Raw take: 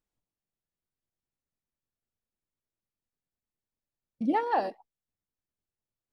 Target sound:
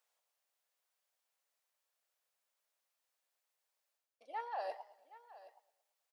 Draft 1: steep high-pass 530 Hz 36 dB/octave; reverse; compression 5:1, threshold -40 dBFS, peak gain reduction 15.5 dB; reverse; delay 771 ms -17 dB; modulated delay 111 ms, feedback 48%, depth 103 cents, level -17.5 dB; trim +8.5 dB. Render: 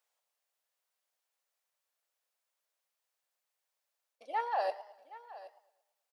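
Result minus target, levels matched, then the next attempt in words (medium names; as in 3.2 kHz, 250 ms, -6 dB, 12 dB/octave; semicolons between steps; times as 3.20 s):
compression: peak gain reduction -8.5 dB
steep high-pass 530 Hz 36 dB/octave; reverse; compression 5:1, threshold -50.5 dBFS, peak gain reduction 24 dB; reverse; delay 771 ms -17 dB; modulated delay 111 ms, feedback 48%, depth 103 cents, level -17.5 dB; trim +8.5 dB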